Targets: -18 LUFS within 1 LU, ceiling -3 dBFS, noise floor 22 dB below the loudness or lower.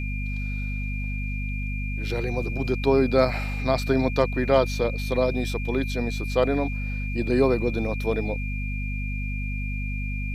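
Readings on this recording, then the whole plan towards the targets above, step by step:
hum 50 Hz; highest harmonic 250 Hz; hum level -26 dBFS; steady tone 2.4 kHz; tone level -35 dBFS; loudness -26.0 LUFS; peak level -6.5 dBFS; loudness target -18.0 LUFS
-> hum notches 50/100/150/200/250 Hz; band-stop 2.4 kHz, Q 30; trim +8 dB; peak limiter -3 dBFS

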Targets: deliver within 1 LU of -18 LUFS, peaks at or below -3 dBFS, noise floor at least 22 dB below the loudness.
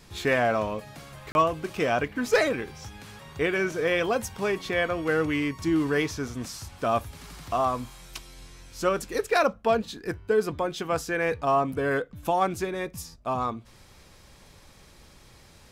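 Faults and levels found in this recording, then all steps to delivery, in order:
dropouts 1; longest dropout 31 ms; loudness -27.0 LUFS; peak level -13.0 dBFS; loudness target -18.0 LUFS
-> interpolate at 1.32 s, 31 ms; trim +9 dB

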